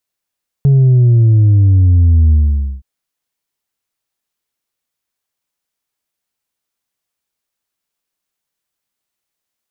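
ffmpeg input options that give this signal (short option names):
-f lavfi -i "aevalsrc='0.501*clip((2.17-t)/0.5,0,1)*tanh(1.33*sin(2*PI*140*2.17/log(65/140)*(exp(log(65/140)*t/2.17)-1)))/tanh(1.33)':d=2.17:s=44100"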